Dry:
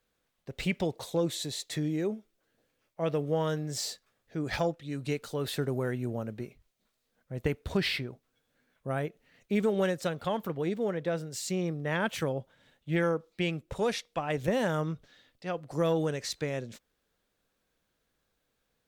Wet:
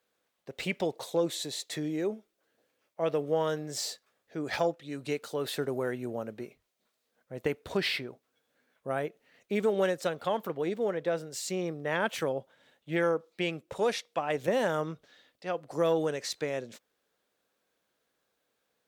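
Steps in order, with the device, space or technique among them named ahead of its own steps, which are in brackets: filter by subtraction (in parallel: LPF 500 Hz 12 dB/oct + phase invert)

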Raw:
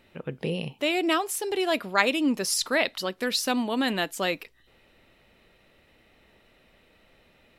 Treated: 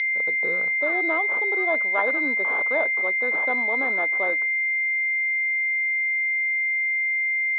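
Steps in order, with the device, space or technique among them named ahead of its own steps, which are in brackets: toy sound module (decimation joined by straight lines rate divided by 4×; pulse-width modulation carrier 2100 Hz; speaker cabinet 700–4300 Hz, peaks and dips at 780 Hz -3 dB, 1200 Hz -3 dB, 2500 Hz -5 dB, 3600 Hz +7 dB); gain +7 dB

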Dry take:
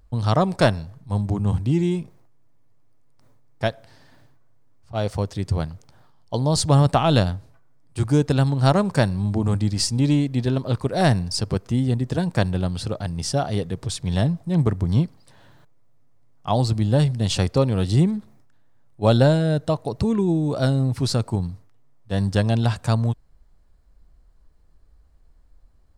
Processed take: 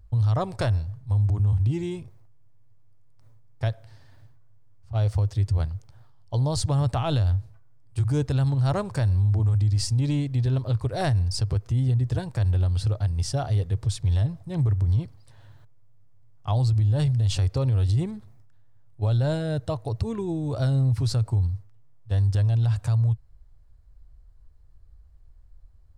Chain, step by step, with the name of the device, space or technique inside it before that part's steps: car stereo with a boomy subwoofer (resonant low shelf 140 Hz +8 dB, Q 3; limiter -11 dBFS, peak gain reduction 11 dB); gain -5.5 dB

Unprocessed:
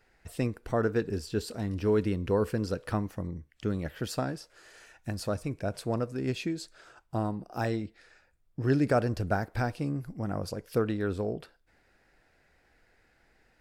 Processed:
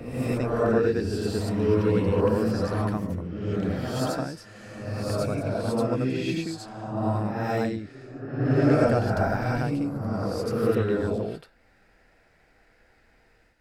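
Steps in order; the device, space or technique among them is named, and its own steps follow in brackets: reverse reverb (reverse; reverb RT60 1.4 s, pre-delay 74 ms, DRR -6 dB; reverse); gain -1.5 dB

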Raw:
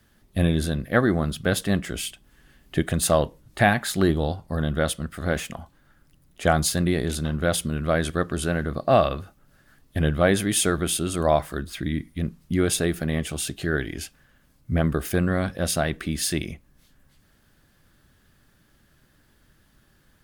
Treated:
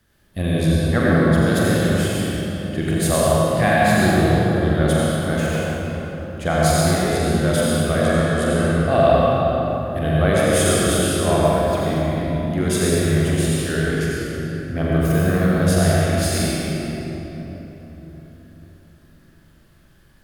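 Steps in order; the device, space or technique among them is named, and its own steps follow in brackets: tunnel (flutter echo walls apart 7.4 m, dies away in 0.45 s; reverb RT60 4.0 s, pre-delay 69 ms, DRR -6 dB); gain -3 dB

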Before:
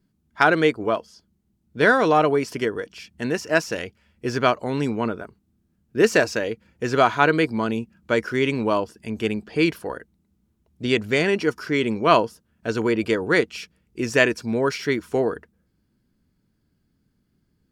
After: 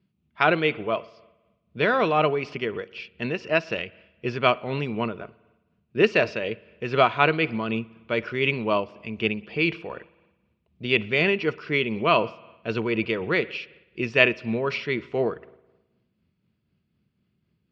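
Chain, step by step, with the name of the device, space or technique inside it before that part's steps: combo amplifier with spring reverb and tremolo (spring tank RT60 1.1 s, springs 53 ms, chirp 20 ms, DRR 19.5 dB; tremolo 4 Hz, depth 36%; speaker cabinet 89–3900 Hz, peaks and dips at 280 Hz -9 dB, 470 Hz -3 dB, 850 Hz -5 dB, 1600 Hz -7 dB, 2600 Hz +7 dB); gain +1 dB

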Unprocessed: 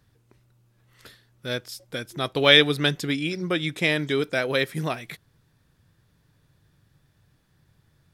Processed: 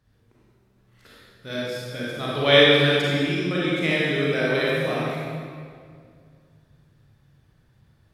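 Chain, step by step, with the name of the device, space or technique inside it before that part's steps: swimming-pool hall (reverb RT60 2.2 s, pre-delay 32 ms, DRR -7.5 dB; high shelf 5600 Hz -6 dB); gain -5.5 dB

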